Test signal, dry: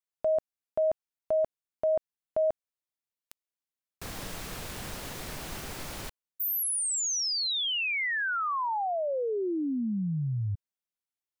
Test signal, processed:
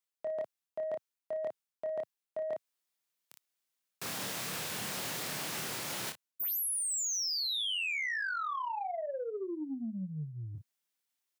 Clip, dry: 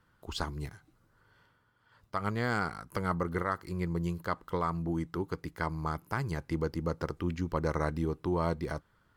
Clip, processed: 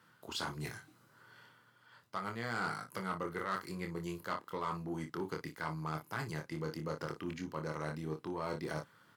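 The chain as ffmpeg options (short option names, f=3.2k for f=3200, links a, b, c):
-af "aecho=1:1:26|58:0.562|0.237,areverse,acompressor=threshold=-36dB:ratio=12:attack=31:release=875:knee=6:detection=peak,areverse,tiltshelf=f=1.1k:g=-3,asoftclip=type=tanh:threshold=-32.5dB,highpass=f=120:w=0.5412,highpass=f=120:w=1.3066,volume=4.5dB"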